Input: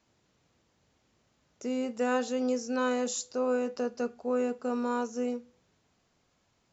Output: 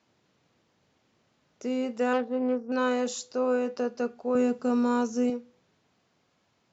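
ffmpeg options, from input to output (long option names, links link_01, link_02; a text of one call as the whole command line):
ffmpeg -i in.wav -filter_complex "[0:a]asettb=1/sr,asplit=3[link_01][link_02][link_03];[link_01]atrim=end=2.134[link_04];[link_02]atrim=start=2.13:end=2.72,asetpts=PTS-STARTPTS,afade=type=in:duration=0.004:curve=qsin,afade=type=out:start_time=0.586:duration=0.004:curve=qsin,adynamicsmooth=sensitivity=1.5:basefreq=570[link_05];[link_03]atrim=start=2.716[link_06];[link_04][link_05]acrossfade=duration=0.004:curve1=hsin:curve2=qsin[link_07];[link_07][link_06]acrossfade=duration=0.004:curve1=qsin:curve2=hsin,highpass=110,lowpass=5600,asettb=1/sr,asplit=3[link_08][link_09][link_10];[link_08]atrim=end=4.354[link_11];[link_09]atrim=start=4.35:end=5.3,asetpts=PTS-STARTPTS,afade=type=in:duration=0.004:curve=qsin,afade=type=out:start_time=0.946:duration=0.004:curve=qsin,bass=frequency=250:gain=10,treble=frequency=4000:gain=7[link_12];[link_10]atrim=start=5.296[link_13];[link_11][link_12]acrossfade=duration=0.004:curve1=hsin:curve2=qsin[link_14];[link_14][link_13]acrossfade=duration=0.004:curve1=qsin:curve2=hsin,volume=2.5dB" out.wav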